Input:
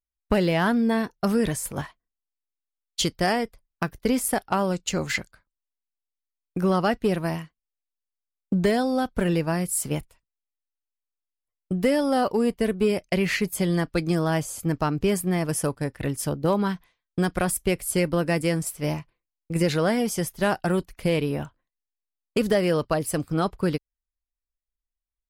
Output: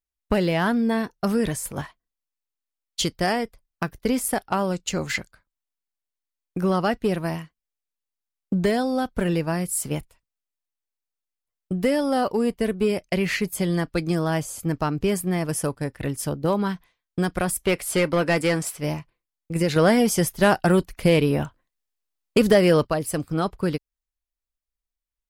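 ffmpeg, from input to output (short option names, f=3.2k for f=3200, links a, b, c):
-filter_complex "[0:a]asplit=3[a][b][c];[a]afade=t=out:st=17.62:d=0.02[d];[b]asplit=2[e][f];[f]highpass=f=720:p=1,volume=16dB,asoftclip=type=tanh:threshold=-11.5dB[g];[e][g]amix=inputs=2:normalize=0,lowpass=f=3.6k:p=1,volume=-6dB,afade=t=in:st=17.62:d=0.02,afade=t=out:st=18.77:d=0.02[h];[c]afade=t=in:st=18.77:d=0.02[i];[d][h][i]amix=inputs=3:normalize=0,asettb=1/sr,asplit=3[j][k][l];[j]atrim=end=19.764[m];[k]atrim=start=19.76:end=22.87,asetpts=PTS-STARTPTS,afade=t=in:d=0.004:c=qsin,afade=t=out:st=3.106:d=0.004:c=qsin,acontrast=40[n];[l]atrim=start=22.866[o];[m][n]acrossfade=d=0.004:c1=hsin:c2=qsin[p];[p][o]acrossfade=d=0.004:c1=qsin:c2=hsin"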